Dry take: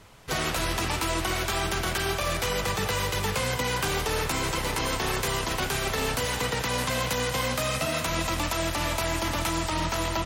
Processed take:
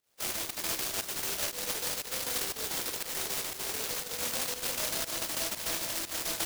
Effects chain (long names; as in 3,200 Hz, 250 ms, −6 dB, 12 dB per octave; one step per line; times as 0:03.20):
in parallel at −3 dB: brickwall limiter −26 dBFS, peak gain reduction 10 dB
on the sum: phase-vocoder stretch with locked phases 0.63×
high-pass filter 640 Hz 12 dB per octave
noise gate −29 dBFS, range −16 dB
on a send at −8 dB: convolution reverb RT60 2.2 s, pre-delay 8 ms
on the sum: fake sidechain pumping 119 BPM, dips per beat 1, −15 dB, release 146 ms
low-pass filter 1,900 Hz 6 dB per octave
delay that swaps between a low-pass and a high-pass 494 ms, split 1,100 Hz, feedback 76%, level −11.5 dB
short delay modulated by noise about 4,700 Hz, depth 0.36 ms
level −1.5 dB